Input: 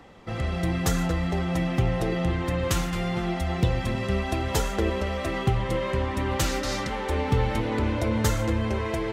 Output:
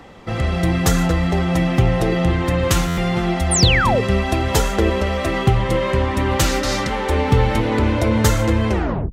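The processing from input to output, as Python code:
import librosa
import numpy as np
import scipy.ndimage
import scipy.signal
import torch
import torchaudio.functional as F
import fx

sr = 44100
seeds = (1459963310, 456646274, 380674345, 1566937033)

y = fx.tape_stop_end(x, sr, length_s=0.41)
y = fx.spec_paint(y, sr, seeds[0], shape='fall', start_s=3.51, length_s=0.5, low_hz=410.0, high_hz=10000.0, level_db=-26.0)
y = fx.buffer_glitch(y, sr, at_s=(2.87,), block=512, repeats=8)
y = y * librosa.db_to_amplitude(8.0)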